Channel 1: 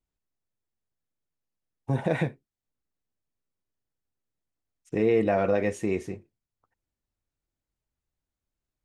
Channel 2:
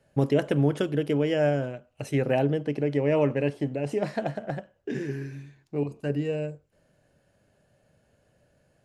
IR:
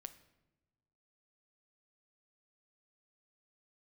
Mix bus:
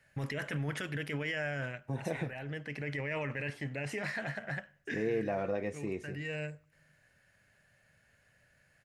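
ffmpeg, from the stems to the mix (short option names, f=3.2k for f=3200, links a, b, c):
-filter_complex "[0:a]volume=-10dB,asplit=2[a][b];[1:a]firequalizer=gain_entry='entry(120,0);entry(320,-8);entry(1900,14);entry(3000,2);entry(8400,-4)':delay=0.05:min_phase=1,alimiter=limit=-23dB:level=0:latency=1:release=12,highshelf=f=4.3k:g=10.5,volume=-6dB,asplit=2[c][d];[d]volume=-10.5dB[e];[b]apad=whole_len=394457[f];[c][f]sidechaincompress=threshold=-41dB:ratio=8:attack=20:release=649[g];[2:a]atrim=start_sample=2205[h];[e][h]afir=irnorm=-1:irlink=0[i];[a][g][i]amix=inputs=3:normalize=0"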